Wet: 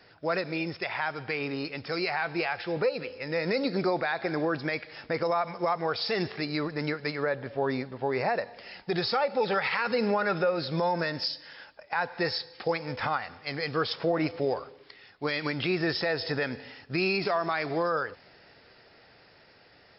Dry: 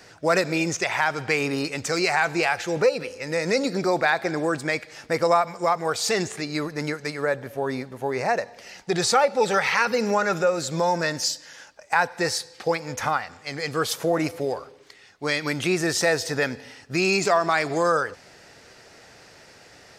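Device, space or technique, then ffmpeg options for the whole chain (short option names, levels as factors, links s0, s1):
low-bitrate web radio: -af "dynaudnorm=f=480:g=13:m=3.76,alimiter=limit=0.316:level=0:latency=1:release=110,volume=0.447" -ar 12000 -c:a libmp3lame -b:a 40k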